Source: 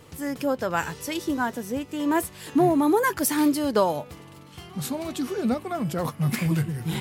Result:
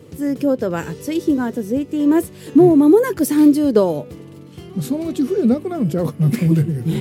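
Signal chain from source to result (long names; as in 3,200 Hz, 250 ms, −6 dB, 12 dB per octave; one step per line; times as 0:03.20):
high-pass filter 89 Hz
low shelf with overshoot 610 Hz +9.5 dB, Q 1.5
level −1 dB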